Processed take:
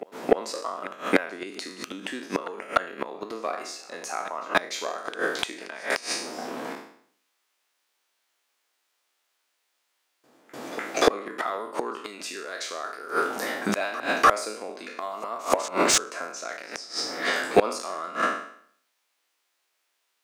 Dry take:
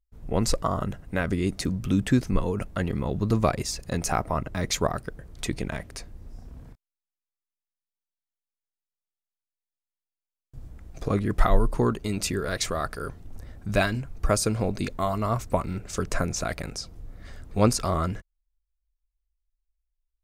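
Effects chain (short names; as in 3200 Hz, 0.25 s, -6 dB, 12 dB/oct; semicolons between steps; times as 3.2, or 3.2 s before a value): spectral trails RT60 0.61 s; HPF 260 Hz 24 dB/oct; high shelf 2100 Hz +3 dB; in parallel at -5.5 dB: hard clip -16 dBFS, distortion -15 dB; on the sum: flipped gate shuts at -16 dBFS, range -30 dB; pre-echo 0.297 s -22 dB; overdrive pedal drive 20 dB, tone 2400 Hz, clips at -10.5 dBFS; gain +7.5 dB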